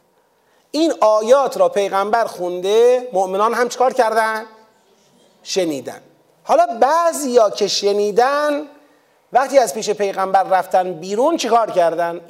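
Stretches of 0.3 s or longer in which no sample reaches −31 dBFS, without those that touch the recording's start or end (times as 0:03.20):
0:04.47–0:05.46
0:05.98–0:06.47
0:08.66–0:09.33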